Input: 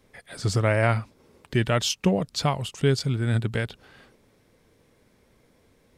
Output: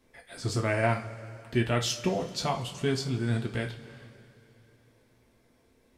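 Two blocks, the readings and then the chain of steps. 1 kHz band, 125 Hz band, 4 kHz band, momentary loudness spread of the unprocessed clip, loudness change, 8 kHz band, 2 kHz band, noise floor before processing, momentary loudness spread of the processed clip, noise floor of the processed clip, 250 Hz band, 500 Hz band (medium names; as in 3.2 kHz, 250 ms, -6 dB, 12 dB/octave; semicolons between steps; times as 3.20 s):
-3.0 dB, -6.5 dB, -4.5 dB, 8 LU, -5.0 dB, -4.0 dB, -4.0 dB, -63 dBFS, 15 LU, -65 dBFS, -4.0 dB, -4.0 dB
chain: two-slope reverb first 0.27 s, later 3.2 s, from -21 dB, DRR 0.5 dB; trim -6.5 dB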